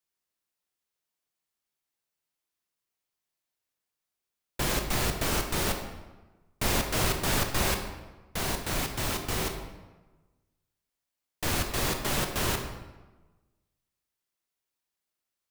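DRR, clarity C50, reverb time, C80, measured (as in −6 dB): 4.5 dB, 6.5 dB, 1.2 s, 8.5 dB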